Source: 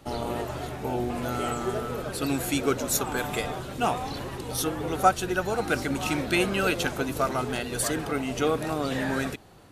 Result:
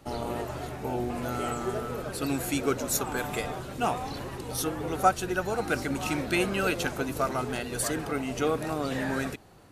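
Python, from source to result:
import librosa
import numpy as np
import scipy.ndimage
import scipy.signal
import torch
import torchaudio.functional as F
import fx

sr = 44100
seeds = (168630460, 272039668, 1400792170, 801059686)

y = fx.peak_eq(x, sr, hz=3400.0, db=-3.0, octaves=0.44)
y = y * librosa.db_to_amplitude(-2.0)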